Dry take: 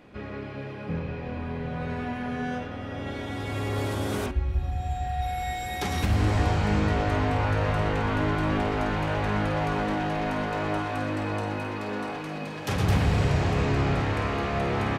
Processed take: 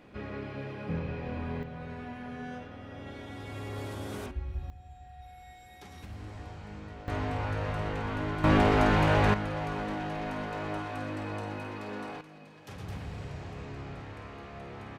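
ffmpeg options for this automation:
-af "asetnsamples=n=441:p=0,asendcmd='1.63 volume volume -9.5dB;4.7 volume volume -20dB;7.08 volume volume -7.5dB;8.44 volume volume 3.5dB;9.34 volume volume -7dB;12.21 volume volume -17dB',volume=0.75"

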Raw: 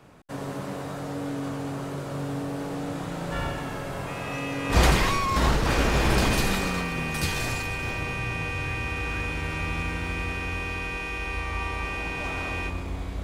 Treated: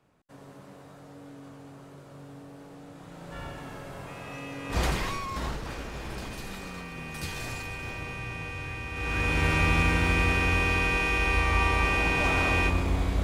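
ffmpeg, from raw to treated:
-af "volume=4.73,afade=t=in:st=2.94:d=0.74:silence=0.446684,afade=t=out:st=5.12:d=0.72:silence=0.421697,afade=t=in:st=6.38:d=1.25:silence=0.354813,afade=t=in:st=8.92:d=0.53:silence=0.237137"

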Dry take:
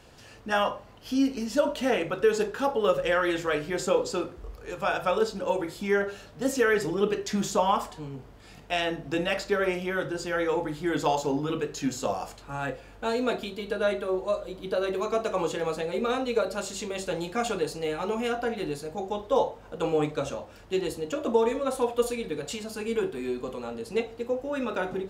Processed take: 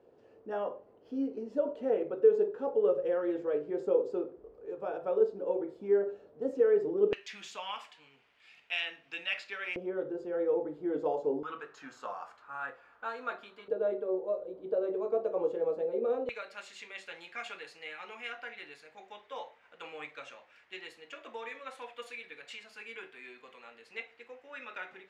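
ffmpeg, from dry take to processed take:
-af "asetnsamples=n=441:p=0,asendcmd='7.13 bandpass f 2500;9.76 bandpass f 440;11.43 bandpass f 1300;13.68 bandpass f 470;16.29 bandpass f 2100',bandpass=f=430:t=q:w=2.8:csg=0"

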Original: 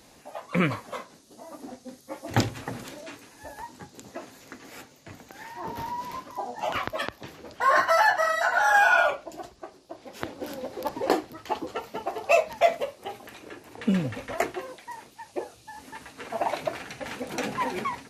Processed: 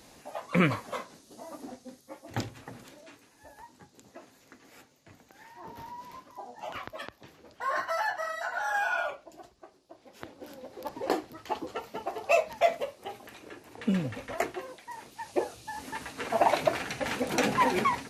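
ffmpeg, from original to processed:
-af "volume=5.01,afade=t=out:st=1.44:d=0.81:silence=0.316228,afade=t=in:st=10.63:d=0.72:silence=0.473151,afade=t=in:st=14.89:d=0.42:silence=0.421697"

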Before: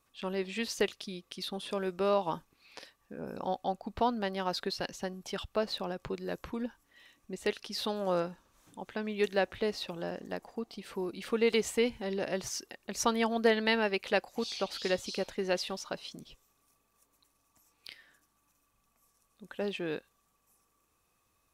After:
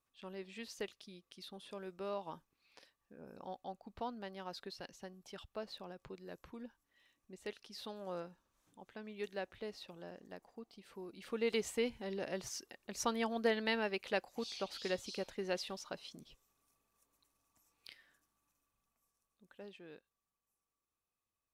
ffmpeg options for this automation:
-af "volume=0.447,afade=t=in:st=11.06:d=0.5:silence=0.501187,afade=t=out:st=17.89:d=1.88:silence=0.251189"

